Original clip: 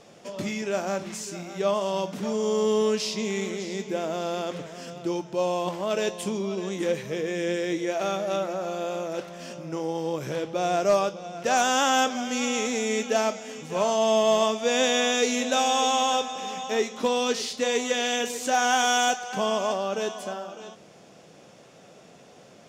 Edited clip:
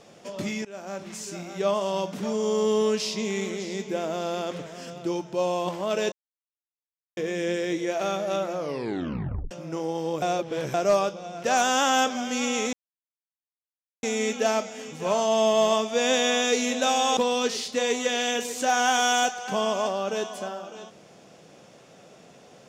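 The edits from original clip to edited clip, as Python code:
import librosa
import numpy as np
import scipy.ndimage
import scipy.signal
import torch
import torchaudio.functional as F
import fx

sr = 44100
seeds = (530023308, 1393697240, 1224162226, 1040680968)

y = fx.edit(x, sr, fx.fade_in_from(start_s=0.65, length_s=0.69, floor_db=-19.0),
    fx.silence(start_s=6.12, length_s=1.05),
    fx.tape_stop(start_s=8.53, length_s=0.98),
    fx.reverse_span(start_s=10.22, length_s=0.52),
    fx.insert_silence(at_s=12.73, length_s=1.3),
    fx.cut(start_s=15.87, length_s=1.15), tone=tone)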